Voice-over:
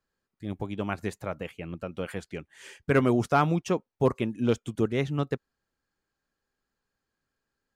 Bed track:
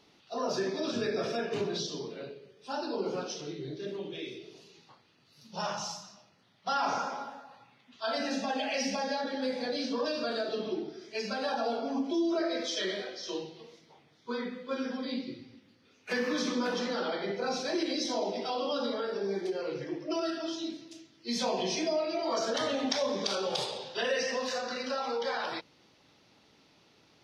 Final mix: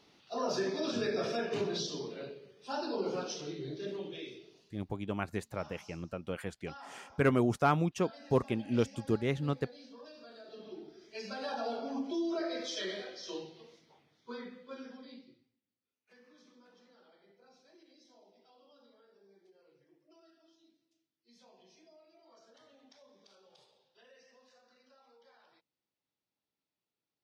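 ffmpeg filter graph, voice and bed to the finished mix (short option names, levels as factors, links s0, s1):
-filter_complex "[0:a]adelay=4300,volume=0.596[s0];[1:a]volume=4.73,afade=t=out:st=3.92:d=0.93:silence=0.11885,afade=t=in:st=10.39:d=1.25:silence=0.177828,afade=t=out:st=13.71:d=1.83:silence=0.0473151[s1];[s0][s1]amix=inputs=2:normalize=0"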